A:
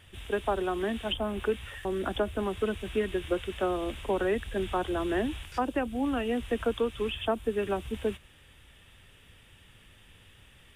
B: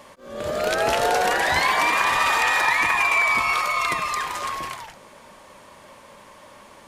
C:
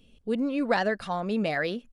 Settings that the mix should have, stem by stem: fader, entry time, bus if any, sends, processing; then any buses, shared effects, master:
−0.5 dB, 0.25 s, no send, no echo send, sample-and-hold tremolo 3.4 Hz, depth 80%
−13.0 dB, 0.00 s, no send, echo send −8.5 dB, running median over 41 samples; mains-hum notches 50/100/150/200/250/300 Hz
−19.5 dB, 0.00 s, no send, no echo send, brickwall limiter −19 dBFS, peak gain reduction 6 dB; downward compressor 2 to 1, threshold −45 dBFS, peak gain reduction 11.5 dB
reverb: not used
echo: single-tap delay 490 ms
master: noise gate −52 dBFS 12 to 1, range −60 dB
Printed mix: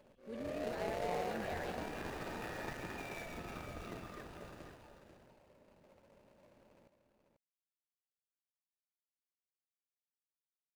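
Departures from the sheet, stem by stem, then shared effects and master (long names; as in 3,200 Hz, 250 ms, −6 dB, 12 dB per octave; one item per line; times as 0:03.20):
stem A: muted
stem C: missing downward compressor 2 to 1, threshold −45 dBFS, peak gain reduction 11.5 dB
master: missing noise gate −52 dBFS 12 to 1, range −60 dB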